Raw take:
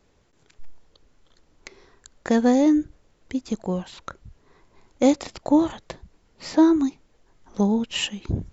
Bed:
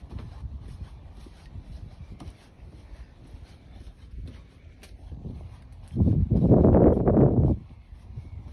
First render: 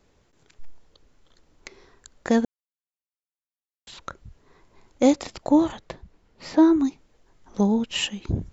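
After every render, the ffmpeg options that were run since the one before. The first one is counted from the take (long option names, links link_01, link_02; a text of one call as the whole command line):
ffmpeg -i in.wav -filter_complex "[0:a]asettb=1/sr,asplit=3[link_01][link_02][link_03];[link_01]atrim=end=5.794[link_04];[link_02]atrim=start=5.79:end=6.85,asetpts=PTS-STARTPTS,afade=type=in:duration=0.004:curve=qsin,afade=type=out:start_time=1.056:duration=0.004:curve=qsin,highshelf=frequency=5800:gain=-10[link_05];[link_03]atrim=start=6.846[link_06];[link_04][link_05]acrossfade=duration=0.004:curve1=hsin:curve2=qsin[link_07];[link_07][link_06]acrossfade=duration=0.004:curve1=qsin:curve2=hsin,asplit=3[link_08][link_09][link_10];[link_08]atrim=end=2.45,asetpts=PTS-STARTPTS,afade=type=out:start_time=2.446:duration=0.004:curve=hsin[link_11];[link_09]atrim=start=2.45:end=3.87,asetpts=PTS-STARTPTS,volume=0[link_12];[link_10]atrim=start=3.87,asetpts=PTS-STARTPTS,afade=type=in:duration=0.004:curve=hsin[link_13];[link_11][link_12][link_13]concat=n=3:v=0:a=1" out.wav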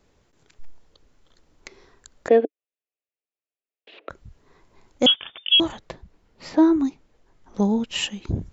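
ffmpeg -i in.wav -filter_complex "[0:a]asettb=1/sr,asplit=3[link_01][link_02][link_03];[link_01]atrim=end=2.284[link_04];[link_02]atrim=start=2.28:end=4.1,asetpts=PTS-STARTPTS,afade=type=in:duration=0.004:curve=qsin,afade=type=out:start_time=1.816:duration=0.004:curve=qsin,highpass=frequency=290:width=0.5412,highpass=frequency=290:width=1.3066,equalizer=frequency=300:width_type=q:width=4:gain=6,equalizer=frequency=440:width_type=q:width=4:gain=10,equalizer=frequency=640:width_type=q:width=4:gain=8,equalizer=frequency=960:width_type=q:width=4:gain=-10,equalizer=frequency=1400:width_type=q:width=4:gain=-6,equalizer=frequency=2600:width_type=q:width=4:gain=7,lowpass=frequency=2900:width=0.5412,lowpass=frequency=2900:width=1.3066[link_05];[link_03]atrim=start=4.096[link_06];[link_04][link_05]acrossfade=duration=0.004:curve1=hsin:curve2=qsin[link_07];[link_07][link_06]acrossfade=duration=0.004:curve1=qsin:curve2=hsin,asettb=1/sr,asplit=3[link_08][link_09][link_10];[link_08]atrim=end=5.064[link_11];[link_09]atrim=start=5.06:end=5.6,asetpts=PTS-STARTPTS,afade=type=in:duration=0.004:curve=qsin,afade=type=out:start_time=0.536:duration=0.004:curve=qsin,lowpass=frequency=3100:width_type=q:width=0.5098,lowpass=frequency=3100:width_type=q:width=0.6013,lowpass=frequency=3100:width_type=q:width=0.9,lowpass=frequency=3100:width_type=q:width=2.563,afreqshift=-3600[link_12];[link_10]atrim=start=5.596[link_13];[link_11][link_12]acrossfade=duration=0.004:curve1=hsin:curve2=qsin[link_14];[link_14][link_13]acrossfade=duration=0.004:curve1=qsin:curve2=hsin,asettb=1/sr,asplit=3[link_15][link_16][link_17];[link_15]atrim=end=6.494[link_18];[link_16]atrim=start=6.49:end=7.62,asetpts=PTS-STARTPTS,afade=type=in:duration=0.004:curve=qsin,afade=type=out:start_time=1.126:duration=0.004:curve=qsin,highshelf=frequency=4400:gain=-5.5[link_19];[link_17]atrim=start=7.616[link_20];[link_18][link_19]acrossfade=duration=0.004:curve1=hsin:curve2=qsin[link_21];[link_21][link_20]acrossfade=duration=0.004:curve1=qsin:curve2=hsin" out.wav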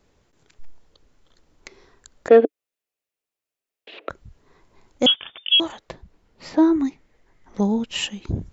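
ffmpeg -i in.wav -filter_complex "[0:a]asplit=3[link_01][link_02][link_03];[link_01]afade=type=out:start_time=2.3:duration=0.02[link_04];[link_02]acontrast=47,afade=type=in:start_time=2.3:duration=0.02,afade=type=out:start_time=4.1:duration=0.02[link_05];[link_03]afade=type=in:start_time=4.1:duration=0.02[link_06];[link_04][link_05][link_06]amix=inputs=3:normalize=0,asettb=1/sr,asplit=3[link_07][link_08][link_09];[link_07]atrim=end=5.484[link_10];[link_08]atrim=start=5.48:end=5.89,asetpts=PTS-STARTPTS,afade=type=in:duration=0.004:curve=qsin,afade=type=out:start_time=0.406:duration=0.004:curve=qsin,bass=frequency=250:gain=-12,treble=frequency=4000:gain=0[link_11];[link_09]atrim=start=5.886[link_12];[link_10][link_11]acrossfade=duration=0.004:curve1=hsin:curve2=qsin[link_13];[link_13][link_12]acrossfade=duration=0.004:curve1=qsin:curve2=hsin,asettb=1/sr,asplit=3[link_14][link_15][link_16];[link_14]atrim=end=6.754[link_17];[link_15]atrim=start=6.75:end=7.6,asetpts=PTS-STARTPTS,afade=type=in:duration=0.004:curve=qsin,afade=type=out:start_time=0.846:duration=0.004:curve=qsin,equalizer=frequency=2000:width_type=o:width=0.35:gain=10[link_18];[link_16]atrim=start=7.596[link_19];[link_17][link_18]acrossfade=duration=0.004:curve1=hsin:curve2=qsin[link_20];[link_20][link_19]acrossfade=duration=0.004:curve1=qsin:curve2=hsin" out.wav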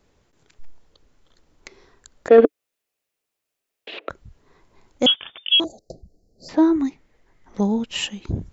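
ffmpeg -i in.wav -filter_complex "[0:a]asettb=1/sr,asplit=3[link_01][link_02][link_03];[link_01]atrim=end=2.384[link_04];[link_02]atrim=start=2.38:end=3.99,asetpts=PTS-STARTPTS,afade=type=in:duration=0.004:curve=qsin,afade=type=out:start_time=1.606:duration=0.004:curve=qsin,acontrast=63[link_05];[link_03]atrim=start=3.986[link_06];[link_04][link_05]acrossfade=duration=0.004:curve1=hsin:curve2=qsin[link_07];[link_07][link_06]acrossfade=duration=0.004:curve1=qsin:curve2=hsin,asettb=1/sr,asplit=3[link_08][link_09][link_10];[link_08]atrim=end=5.644[link_11];[link_09]atrim=start=5.64:end=6.49,asetpts=PTS-STARTPTS,afade=type=in:duration=0.004:curve=qsin,afade=type=out:start_time=0.846:duration=0.004:curve=qsin,asuperstop=centerf=1800:order=20:qfactor=0.5[link_12];[link_10]atrim=start=6.486[link_13];[link_11][link_12]acrossfade=duration=0.004:curve1=hsin:curve2=qsin[link_14];[link_14][link_13]acrossfade=duration=0.004:curve1=qsin:curve2=hsin" out.wav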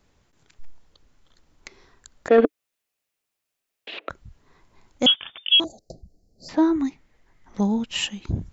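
ffmpeg -i in.wav -af "equalizer=frequency=440:width_type=o:width=1.1:gain=-5" out.wav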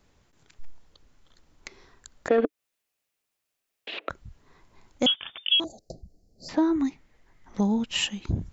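ffmpeg -i in.wav -af "acompressor=threshold=-21dB:ratio=2.5" out.wav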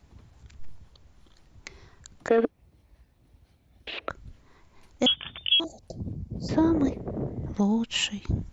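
ffmpeg -i in.wav -i bed.wav -filter_complex "[1:a]volume=-13.5dB[link_01];[0:a][link_01]amix=inputs=2:normalize=0" out.wav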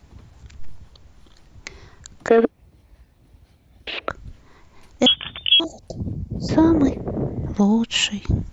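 ffmpeg -i in.wav -af "volume=7dB" out.wav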